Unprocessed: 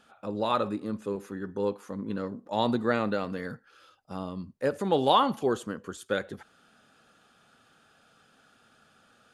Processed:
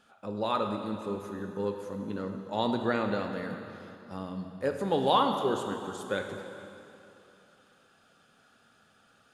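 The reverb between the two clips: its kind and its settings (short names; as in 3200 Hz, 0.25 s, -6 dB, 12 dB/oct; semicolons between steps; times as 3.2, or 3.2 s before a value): plate-style reverb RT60 2.9 s, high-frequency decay 0.9×, DRR 4.5 dB; gain -3 dB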